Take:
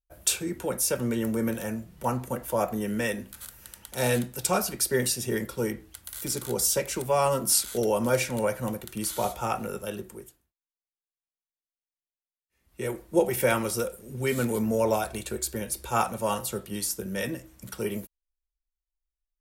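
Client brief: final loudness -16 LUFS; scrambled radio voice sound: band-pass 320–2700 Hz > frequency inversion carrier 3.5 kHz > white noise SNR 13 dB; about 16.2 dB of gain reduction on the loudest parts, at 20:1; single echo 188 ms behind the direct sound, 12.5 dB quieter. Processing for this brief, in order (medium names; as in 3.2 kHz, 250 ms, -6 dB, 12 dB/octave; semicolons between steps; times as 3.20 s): compression 20:1, threshold -34 dBFS; band-pass 320–2700 Hz; delay 188 ms -12.5 dB; frequency inversion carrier 3.5 kHz; white noise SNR 13 dB; trim +23.5 dB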